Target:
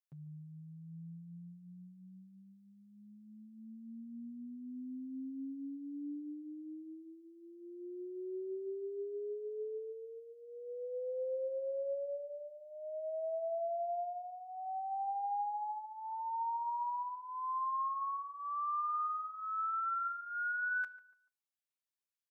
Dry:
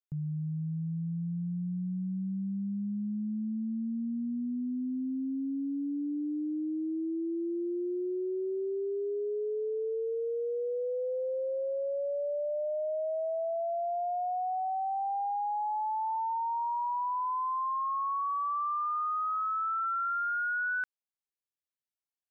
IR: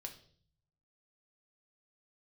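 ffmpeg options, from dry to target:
-filter_complex "[0:a]highpass=frequency=880:poles=1,aecho=1:1:7.5:0.71,acompressor=threshold=-30dB:ratio=6,asplit=2[link_01][link_02];[link_02]adelay=145,lowpass=frequency=1500:poles=1,volume=-16dB,asplit=2[link_03][link_04];[link_04]adelay=145,lowpass=frequency=1500:poles=1,volume=0.39,asplit=2[link_05][link_06];[link_06]adelay=145,lowpass=frequency=1500:poles=1,volume=0.39[link_07];[link_01][link_03][link_05][link_07]amix=inputs=4:normalize=0,asplit=2[link_08][link_09];[1:a]atrim=start_sample=2205,afade=type=out:start_time=0.23:duration=0.01,atrim=end_sample=10584[link_10];[link_09][link_10]afir=irnorm=-1:irlink=0,volume=-5.5dB[link_11];[link_08][link_11]amix=inputs=2:normalize=0,volume=-6dB"

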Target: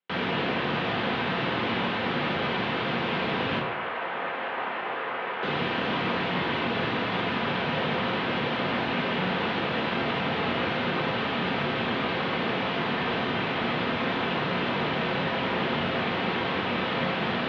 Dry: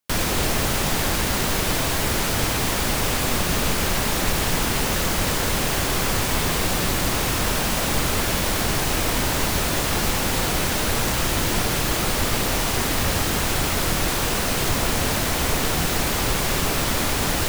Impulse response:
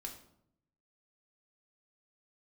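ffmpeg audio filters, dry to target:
-filter_complex "[0:a]asettb=1/sr,asplit=3[link_01][link_02][link_03];[link_01]atrim=end=3.594[link_04];[link_02]atrim=start=3.59:end=5.43,asetpts=PTS-STARTPTS,afade=type=in:duration=0.004:curve=qsin,afade=type=out:start_time=1.836:duration=0.004:curve=qsin,acrossover=split=510 2500:gain=0.0708 1 0.126[link_05][link_06][link_07];[link_05][link_06][link_07]amix=inputs=3:normalize=0[link_08];[link_03]atrim=start=5.426[link_09];[link_04][link_08]acrossfade=duration=0.004:curve1=hsin:curve2=qsin[link_10];[link_10][link_09]acrossfade=duration=0.004:curve1=qsin:curve2=hsin[link_11];[1:a]atrim=start_sample=2205,asetrate=35280,aresample=44100[link_12];[link_11][link_12]afir=irnorm=-1:irlink=0,highpass=frequency=240:width_type=q:width=0.5412,highpass=frequency=240:width_type=q:width=1.307,lowpass=frequency=3500:width_type=q:width=0.5176,lowpass=frequency=3500:width_type=q:width=0.7071,lowpass=frequency=3500:width_type=q:width=1.932,afreqshift=-77"

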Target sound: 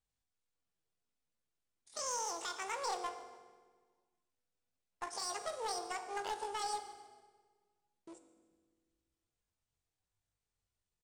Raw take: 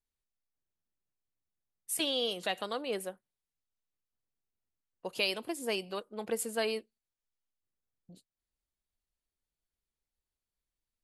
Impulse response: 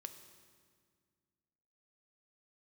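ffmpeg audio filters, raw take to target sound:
-filter_complex "[0:a]lowshelf=frequency=170:gain=-3.5,asplit=2[link_01][link_02];[link_02]acompressor=threshold=-42dB:ratio=12,volume=-0.5dB[link_03];[link_01][link_03]amix=inputs=2:normalize=0,alimiter=level_in=1.5dB:limit=-24dB:level=0:latency=1:release=31,volume=-1.5dB,aresample=11025,acrusher=bits=3:mode=log:mix=0:aa=0.000001,aresample=44100,aeval=exprs='clip(val(0),-1,0.0237)':channel_layout=same,asetrate=83250,aresample=44100,atempo=0.529732,asplit=4[link_04][link_05][link_06][link_07];[link_05]adelay=144,afreqshift=-55,volume=-21.5dB[link_08];[link_06]adelay=288,afreqshift=-110,volume=-28.8dB[link_09];[link_07]adelay=432,afreqshift=-165,volume=-36.2dB[link_10];[link_04][link_08][link_09][link_10]amix=inputs=4:normalize=0[link_11];[1:a]atrim=start_sample=2205,asetrate=57330,aresample=44100[link_12];[link_11][link_12]afir=irnorm=-1:irlink=0,volume=5dB"

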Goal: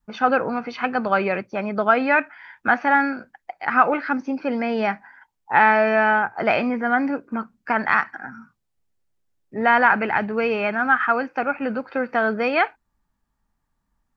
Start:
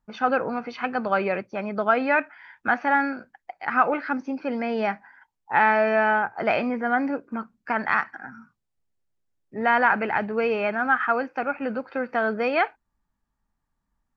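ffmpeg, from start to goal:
ffmpeg -i in.wav -af "adynamicequalizer=threshold=0.0224:dfrequency=540:dqfactor=1.2:tfrequency=540:tqfactor=1.2:attack=5:release=100:ratio=0.375:range=2:mode=cutabove:tftype=bell,volume=4dB" out.wav

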